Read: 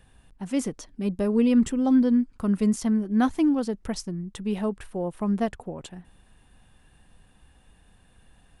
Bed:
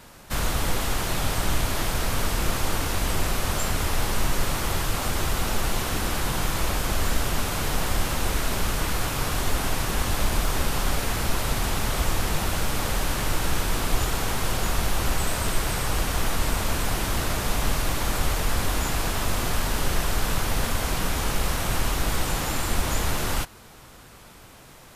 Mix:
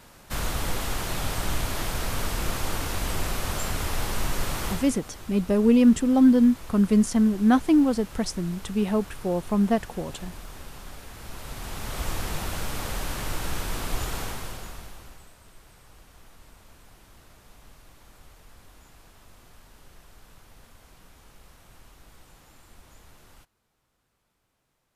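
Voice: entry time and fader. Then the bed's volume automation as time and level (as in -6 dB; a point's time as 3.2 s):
4.30 s, +3.0 dB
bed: 4.7 s -3.5 dB
5 s -17.5 dB
11.1 s -17.5 dB
12.09 s -5.5 dB
14.21 s -5.5 dB
15.35 s -27.5 dB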